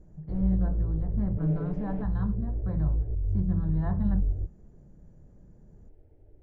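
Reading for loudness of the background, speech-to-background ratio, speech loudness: -32.0 LUFS, -0.5 dB, -32.5 LUFS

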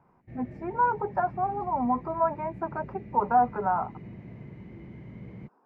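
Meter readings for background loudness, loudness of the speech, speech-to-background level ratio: -44.0 LUFS, -28.5 LUFS, 15.5 dB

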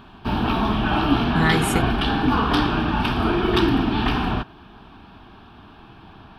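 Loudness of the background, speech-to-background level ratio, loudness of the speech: -21.0 LUFS, -3.0 dB, -24.0 LUFS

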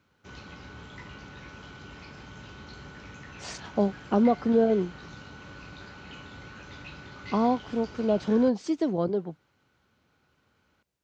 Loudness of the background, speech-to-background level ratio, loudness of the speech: -45.0 LUFS, 19.0 dB, -26.0 LUFS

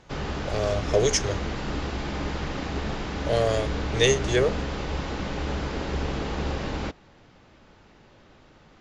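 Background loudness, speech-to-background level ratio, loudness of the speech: -31.0 LUFS, 6.0 dB, -25.0 LUFS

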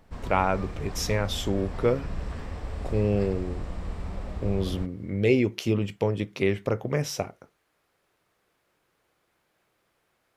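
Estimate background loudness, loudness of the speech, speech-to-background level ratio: -37.5 LUFS, -27.5 LUFS, 10.0 dB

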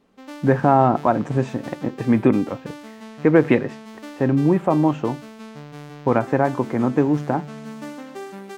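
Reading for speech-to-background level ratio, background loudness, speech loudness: 17.5 dB, -37.5 LUFS, -20.0 LUFS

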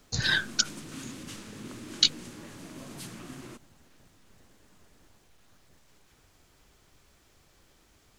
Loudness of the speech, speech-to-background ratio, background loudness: -26.0 LUFS, 17.5 dB, -43.5 LUFS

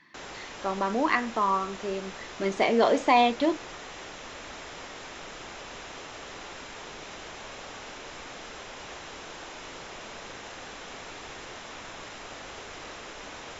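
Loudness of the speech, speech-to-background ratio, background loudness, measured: -26.0 LUFS, 15.0 dB, -41.0 LUFS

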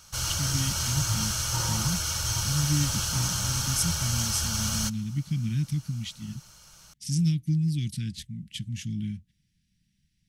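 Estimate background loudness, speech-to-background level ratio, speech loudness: -27.0 LUFS, -4.0 dB, -31.0 LUFS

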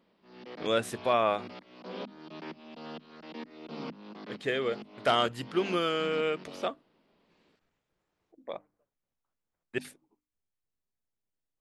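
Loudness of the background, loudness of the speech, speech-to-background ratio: -45.5 LUFS, -30.5 LUFS, 15.0 dB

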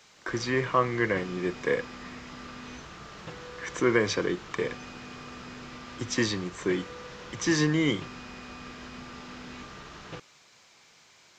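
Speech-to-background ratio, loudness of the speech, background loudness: 14.5 dB, -28.5 LUFS, -43.0 LUFS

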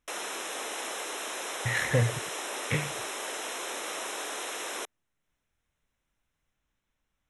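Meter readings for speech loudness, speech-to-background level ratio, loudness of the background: -30.0 LUFS, 4.5 dB, -34.5 LUFS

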